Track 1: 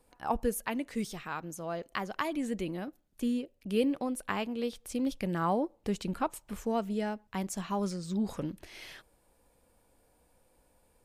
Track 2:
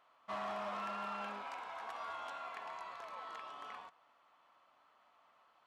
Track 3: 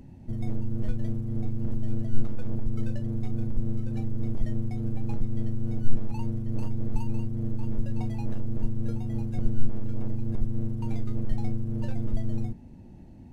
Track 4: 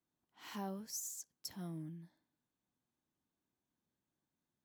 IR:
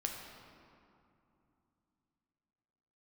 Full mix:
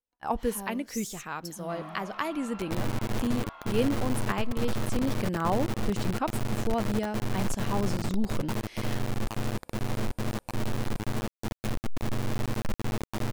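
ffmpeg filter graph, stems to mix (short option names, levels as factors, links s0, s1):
-filter_complex "[0:a]volume=1.19[s0];[1:a]lowpass=4700,adelay=1400,volume=0.708[s1];[2:a]alimiter=limit=0.126:level=0:latency=1:release=155,acrusher=bits=3:mix=0:aa=0.000001,adelay=2300,volume=0.447[s2];[3:a]highpass=f=130:w=0.5412,highpass=f=130:w=1.3066,volume=1.33[s3];[s0][s1][s2][s3]amix=inputs=4:normalize=0,agate=range=0.0224:threshold=0.00631:ratio=3:detection=peak"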